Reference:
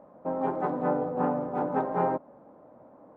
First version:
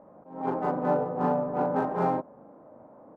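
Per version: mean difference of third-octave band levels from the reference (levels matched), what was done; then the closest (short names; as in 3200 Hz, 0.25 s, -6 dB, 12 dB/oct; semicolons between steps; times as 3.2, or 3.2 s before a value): 2.5 dB: Wiener smoothing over 9 samples; doubler 39 ms -2 dB; attack slew limiter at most 110 dB/s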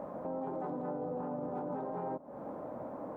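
6.0 dB: dynamic EQ 2000 Hz, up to -7 dB, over -45 dBFS, Q 0.77; compressor 4:1, threshold -42 dBFS, peak gain reduction 15.5 dB; limiter -41 dBFS, peak gain reduction 10.5 dB; gain +10.5 dB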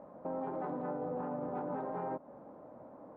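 3.5 dB: compressor 3:1, threshold -33 dBFS, peak gain reduction 9 dB; limiter -31 dBFS, peak gain reduction 9 dB; air absorption 110 m; gain +1 dB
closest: first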